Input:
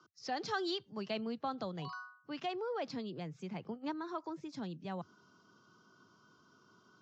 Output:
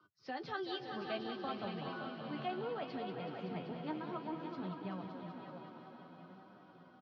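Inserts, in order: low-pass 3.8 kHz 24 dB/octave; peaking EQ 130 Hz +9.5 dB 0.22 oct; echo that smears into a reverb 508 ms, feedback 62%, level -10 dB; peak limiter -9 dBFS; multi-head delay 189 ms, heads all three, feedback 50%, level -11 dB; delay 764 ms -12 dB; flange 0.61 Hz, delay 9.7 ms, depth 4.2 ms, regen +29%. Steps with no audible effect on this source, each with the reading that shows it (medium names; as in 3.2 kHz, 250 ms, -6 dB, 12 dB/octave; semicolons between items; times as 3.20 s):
peak limiter -9 dBFS: peak at its input -23.0 dBFS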